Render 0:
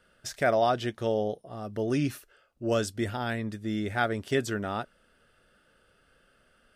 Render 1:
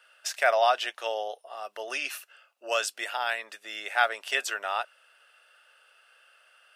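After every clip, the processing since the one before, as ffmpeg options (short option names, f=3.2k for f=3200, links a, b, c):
-af "highpass=f=680:w=0.5412,highpass=f=680:w=1.3066,equalizer=f=2.7k:t=o:w=0.21:g=9.5,volume=5dB"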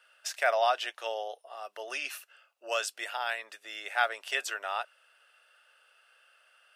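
-af "highpass=270,volume=-3.5dB"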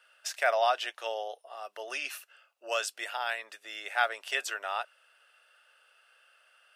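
-af anull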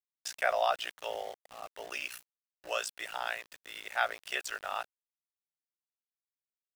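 -af "aeval=exprs='val(0)*sin(2*PI*30*n/s)':c=same,aeval=exprs='val(0)*gte(abs(val(0)),0.00531)':c=same"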